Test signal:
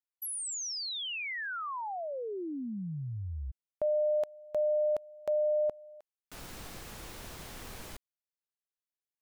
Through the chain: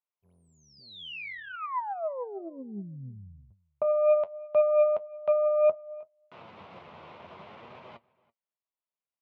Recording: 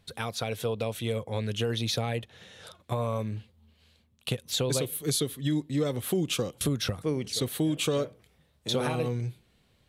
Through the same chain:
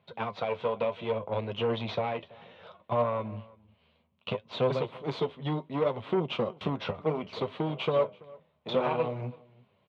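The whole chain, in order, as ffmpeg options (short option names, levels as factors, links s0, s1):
-filter_complex "[0:a]flanger=delay=7.5:depth=5.4:regen=50:speed=0.64:shape=triangular,aeval=exprs='0.112*(cos(1*acos(clip(val(0)/0.112,-1,1)))-cos(1*PI/2))+0.00501*(cos(5*acos(clip(val(0)/0.112,-1,1)))-cos(5*PI/2))+0.00316*(cos(7*acos(clip(val(0)/0.112,-1,1)))-cos(7*PI/2))+0.0112*(cos(8*acos(clip(val(0)/0.112,-1,1)))-cos(8*PI/2))':c=same,highpass=f=110:w=0.5412,highpass=f=110:w=1.3066,equalizer=f=120:t=q:w=4:g=-7,equalizer=f=290:t=q:w=4:g=-8,equalizer=f=620:t=q:w=4:g=6,equalizer=f=1000:t=q:w=4:g=7,equalizer=f=1700:t=q:w=4:g=-8,lowpass=f=2900:w=0.5412,lowpass=f=2900:w=1.3066,asplit=2[s0][s1];[s1]adelay=332.4,volume=0.0708,highshelf=f=4000:g=-7.48[s2];[s0][s2]amix=inputs=2:normalize=0,volume=1.5"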